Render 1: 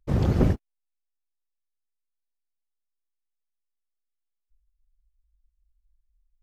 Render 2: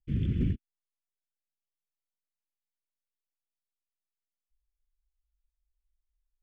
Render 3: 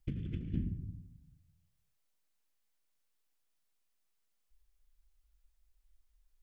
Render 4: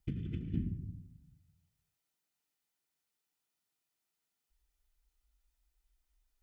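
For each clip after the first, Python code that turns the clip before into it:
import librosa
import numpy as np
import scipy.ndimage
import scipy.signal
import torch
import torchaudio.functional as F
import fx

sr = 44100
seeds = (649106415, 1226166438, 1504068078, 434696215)

y1 = scipy.signal.sosfilt(scipy.signal.cheby1(10, 1.0, 3500.0, 'lowpass', fs=sr, output='sos'), x)
y1 = fx.leveller(y1, sr, passes=1)
y1 = scipy.signal.sosfilt(scipy.signal.cheby1(2, 1.0, [250.0, 2600.0], 'bandstop', fs=sr, output='sos'), y1)
y1 = y1 * 10.0 ** (-8.0 / 20.0)
y2 = fx.room_shoebox(y1, sr, seeds[0], volume_m3=1900.0, walls='furnished', distance_m=0.53)
y2 = fx.over_compress(y2, sr, threshold_db=-38.0, ratio=-1.0)
y2 = y2 * 10.0 ** (1.0 / 20.0)
y3 = fx.notch_comb(y2, sr, f0_hz=550.0)
y3 = y3 * 10.0 ** (1.0 / 20.0)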